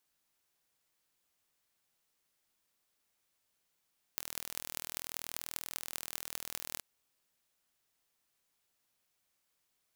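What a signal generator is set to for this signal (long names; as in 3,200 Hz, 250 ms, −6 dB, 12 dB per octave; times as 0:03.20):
impulse train 40.5 per second, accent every 8, −8 dBFS 2.63 s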